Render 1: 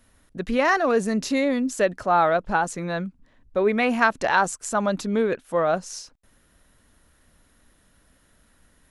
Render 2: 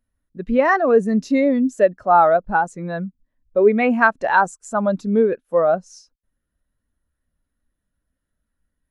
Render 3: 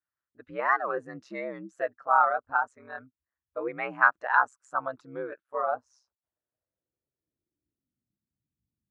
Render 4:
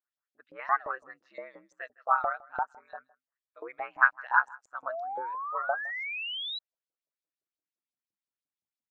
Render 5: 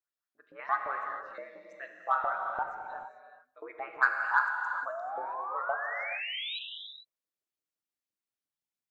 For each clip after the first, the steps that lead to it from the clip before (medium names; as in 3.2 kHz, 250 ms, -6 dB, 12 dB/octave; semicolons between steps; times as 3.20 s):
spectral contrast expander 1.5:1; trim +4 dB
treble shelf 4.2 kHz +6 dB; ring modulator 66 Hz; band-pass sweep 1.3 kHz -> 200 Hz, 5.52–8.21 s
LFO band-pass saw up 5.8 Hz 580–6000 Hz; delay 160 ms -23.5 dB; painted sound rise, 4.88–6.59 s, 610–4000 Hz -38 dBFS; trim +2.5 dB
in parallel at -11.5 dB: saturation -17.5 dBFS, distortion -11 dB; on the sum: gated-style reverb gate 470 ms flat, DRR 2.5 dB; trim -5 dB